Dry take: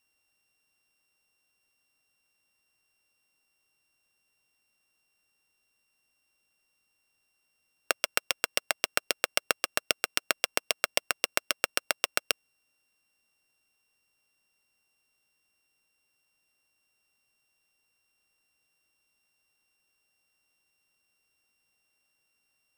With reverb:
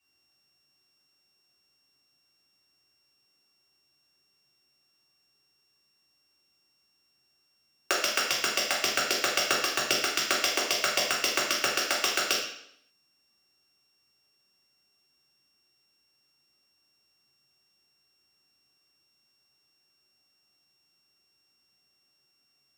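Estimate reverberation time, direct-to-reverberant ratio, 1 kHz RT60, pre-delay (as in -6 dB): 0.70 s, -5.5 dB, 0.70 s, 3 ms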